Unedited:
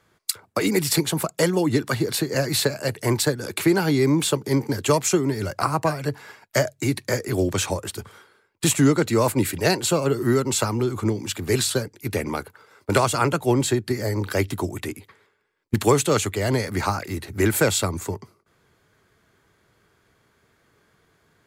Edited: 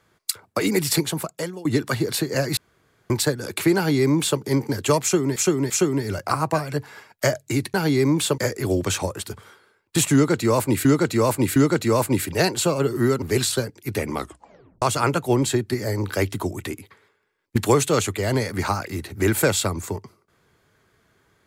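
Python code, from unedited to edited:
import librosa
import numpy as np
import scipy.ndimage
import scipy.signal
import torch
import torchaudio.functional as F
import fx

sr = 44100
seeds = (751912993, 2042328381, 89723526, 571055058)

y = fx.edit(x, sr, fx.fade_out_to(start_s=0.97, length_s=0.68, floor_db=-21.0),
    fx.room_tone_fill(start_s=2.57, length_s=0.53),
    fx.duplicate(start_s=3.76, length_s=0.64, to_s=7.06),
    fx.repeat(start_s=5.02, length_s=0.34, count=3),
    fx.repeat(start_s=8.82, length_s=0.71, count=3),
    fx.cut(start_s=10.48, length_s=0.92),
    fx.tape_stop(start_s=12.33, length_s=0.67), tone=tone)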